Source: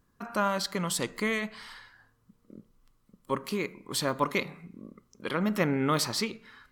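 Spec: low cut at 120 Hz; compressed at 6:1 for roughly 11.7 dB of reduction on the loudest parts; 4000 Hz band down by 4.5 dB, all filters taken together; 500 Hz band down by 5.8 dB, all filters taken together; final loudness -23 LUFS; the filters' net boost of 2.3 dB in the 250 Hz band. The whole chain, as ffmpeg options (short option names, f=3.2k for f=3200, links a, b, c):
-af "highpass=120,equalizer=f=250:t=o:g=5.5,equalizer=f=500:t=o:g=-9,equalizer=f=4k:t=o:g=-5.5,acompressor=threshold=-36dB:ratio=6,volume=18dB"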